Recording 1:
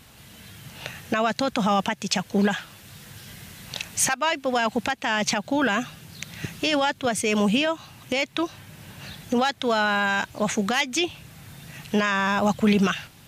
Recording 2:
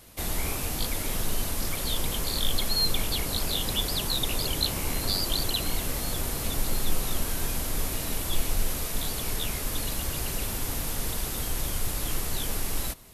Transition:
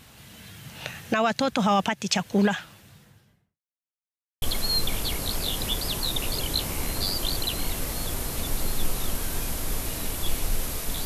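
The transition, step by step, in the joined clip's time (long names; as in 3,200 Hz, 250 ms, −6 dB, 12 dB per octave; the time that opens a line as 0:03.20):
recording 1
0:02.35–0:03.61: fade out and dull
0:03.61–0:04.42: silence
0:04.42: continue with recording 2 from 0:02.49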